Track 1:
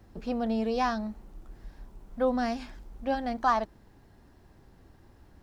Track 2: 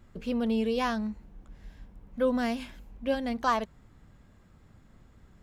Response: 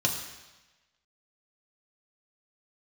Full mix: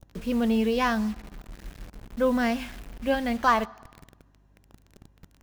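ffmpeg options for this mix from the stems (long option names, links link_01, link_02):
-filter_complex "[0:a]volume=-15dB,asplit=2[link_01][link_02];[link_02]volume=-7.5dB[link_03];[1:a]acrusher=bits=7:mix=0:aa=0.000001,aeval=exprs='val(0)+0.000562*(sin(2*PI*50*n/s)+sin(2*PI*2*50*n/s)/2+sin(2*PI*3*50*n/s)/3+sin(2*PI*4*50*n/s)/4+sin(2*PI*5*50*n/s)/5)':channel_layout=same,lowshelf=frequency=340:gain=4.5,volume=0.5dB[link_04];[2:a]atrim=start_sample=2205[link_05];[link_03][link_05]afir=irnorm=-1:irlink=0[link_06];[link_01][link_04][link_06]amix=inputs=3:normalize=0,adynamicequalizer=threshold=0.00631:dfrequency=2100:dqfactor=0.87:tfrequency=2100:tqfactor=0.87:attack=5:release=100:ratio=0.375:range=3:mode=boostabove:tftype=bell"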